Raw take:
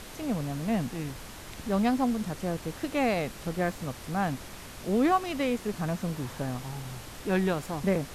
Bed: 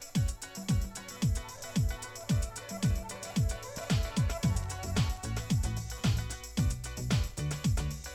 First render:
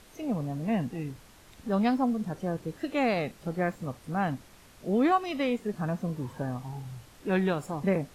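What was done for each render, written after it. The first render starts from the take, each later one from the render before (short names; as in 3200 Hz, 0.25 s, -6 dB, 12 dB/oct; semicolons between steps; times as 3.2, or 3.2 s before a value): noise print and reduce 11 dB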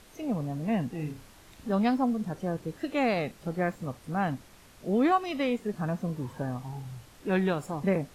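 0.96–1.72 flutter echo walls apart 5.6 m, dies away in 0.26 s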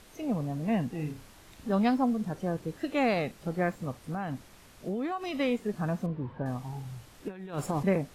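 4.02–5.34 compressor, threshold -29 dBFS; 6.06–6.46 air absorption 410 m; 7.28–7.83 negative-ratio compressor -33 dBFS, ratio -0.5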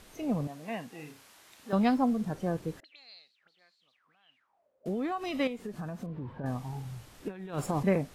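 0.47–1.73 HPF 900 Hz 6 dB/oct; 2.8–4.86 auto-wah 430–4300 Hz, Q 15, up, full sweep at -28.5 dBFS; 5.47–6.44 compressor, threshold -34 dBFS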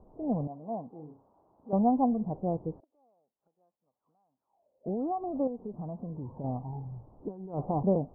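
steep low-pass 960 Hz 48 dB/oct; dynamic EQ 730 Hz, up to +4 dB, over -46 dBFS, Q 3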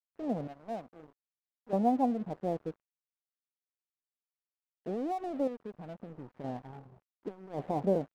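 band-pass 480 Hz, Q 0.62; crossover distortion -49.5 dBFS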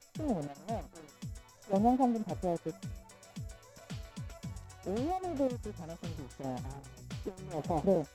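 add bed -14 dB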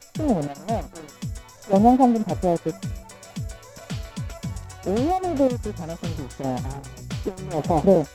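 gain +12 dB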